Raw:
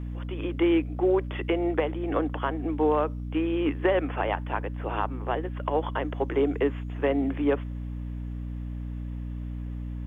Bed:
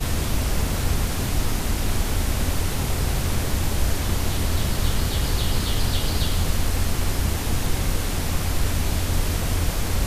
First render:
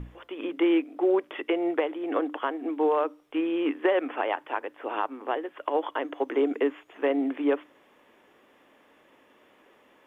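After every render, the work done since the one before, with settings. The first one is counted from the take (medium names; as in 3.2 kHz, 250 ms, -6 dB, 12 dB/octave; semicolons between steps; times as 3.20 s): hum notches 60/120/180/240/300 Hz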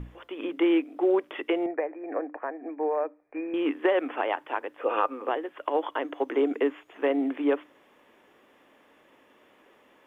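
1.66–3.54 s: rippled Chebyshev low-pass 2.5 kHz, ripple 9 dB; 4.78–5.29 s: small resonant body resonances 510/1200/2500 Hz, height 13 dB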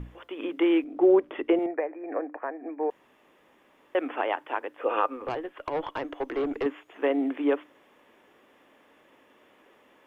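0.84–1.59 s: tilt EQ -3 dB/octave; 2.90–3.95 s: room tone; 5.16–6.66 s: valve stage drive 23 dB, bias 0.3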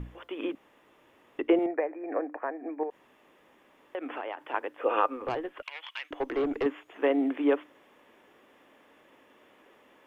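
0.55–1.39 s: room tone; 2.83–4.54 s: compression 4:1, threshold -33 dBFS; 5.62–6.11 s: resonant high-pass 2.4 kHz, resonance Q 2.5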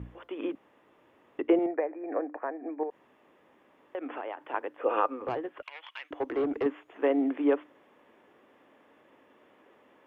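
high-pass 62 Hz; treble shelf 2.7 kHz -10 dB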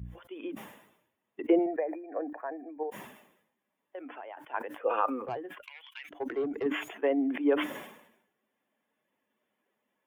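expander on every frequency bin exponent 1.5; decay stretcher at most 72 dB/s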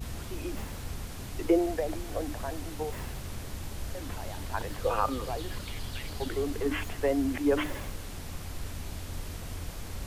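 add bed -15.5 dB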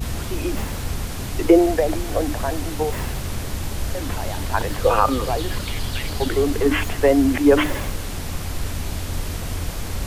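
trim +11.5 dB; peak limiter -3 dBFS, peak gain reduction 1.5 dB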